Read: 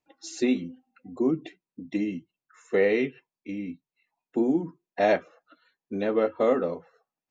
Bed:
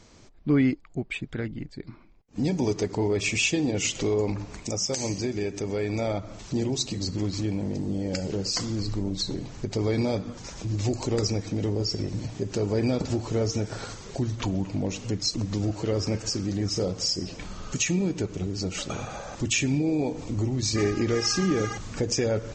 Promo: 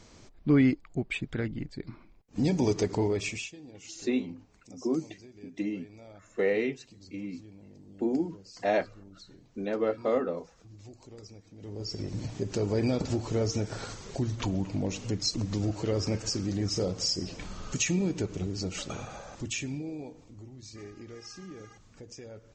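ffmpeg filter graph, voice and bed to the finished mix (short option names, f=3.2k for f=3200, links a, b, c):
-filter_complex "[0:a]adelay=3650,volume=-4.5dB[a];[1:a]volume=19.5dB,afade=t=out:st=2.95:d=0.56:silence=0.0794328,afade=t=in:st=11.57:d=0.7:silence=0.1,afade=t=out:st=18.37:d=1.93:silence=0.125893[b];[a][b]amix=inputs=2:normalize=0"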